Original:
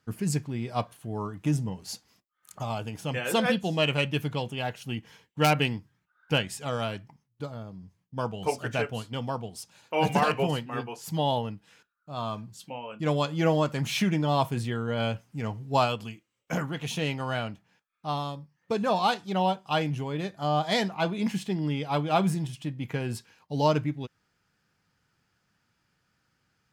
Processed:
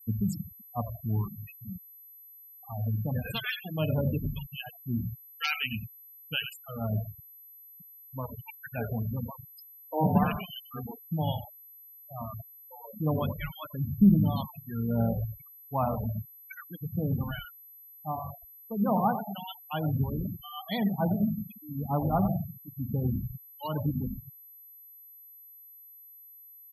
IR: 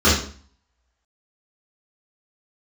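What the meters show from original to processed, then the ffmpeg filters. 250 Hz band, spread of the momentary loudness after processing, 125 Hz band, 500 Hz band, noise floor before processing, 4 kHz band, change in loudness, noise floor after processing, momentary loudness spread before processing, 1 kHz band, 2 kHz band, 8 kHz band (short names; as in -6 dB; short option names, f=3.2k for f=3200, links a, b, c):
+0.5 dB, 21 LU, +0.5 dB, -7.5 dB, -77 dBFS, -7.0 dB, -2.5 dB, -52 dBFS, 14 LU, -6.0 dB, -6.5 dB, under -15 dB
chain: -filter_complex "[0:a]acrossover=split=1300[a][b];[a]aeval=exprs='val(0)*(1-1/2+1/2*cos(2*PI*1*n/s))':c=same[c];[b]aeval=exprs='val(0)*(1-1/2-1/2*cos(2*PI*1*n/s))':c=same[d];[c][d]amix=inputs=2:normalize=0,equalizer=f=110:w=0.3:g=-5,asplit=5[e][f][g][h][i];[f]adelay=92,afreqshift=-51,volume=-9dB[j];[g]adelay=184,afreqshift=-102,volume=-18.6dB[k];[h]adelay=276,afreqshift=-153,volume=-28.3dB[l];[i]adelay=368,afreqshift=-204,volume=-37.9dB[m];[e][j][k][l][m]amix=inputs=5:normalize=0,asplit=2[n][o];[1:a]atrim=start_sample=2205,asetrate=22491,aresample=44100[p];[o][p]afir=irnorm=-1:irlink=0,volume=-37.5dB[q];[n][q]amix=inputs=2:normalize=0,aeval=exprs='val(0)+0.00562*sin(2*PI*12000*n/s)':c=same,afftfilt=real='re*gte(hypot(re,im),0.0398)':imag='im*gte(hypot(re,im),0.0398)':win_size=1024:overlap=0.75,lowshelf=f=280:t=q:w=1.5:g=8"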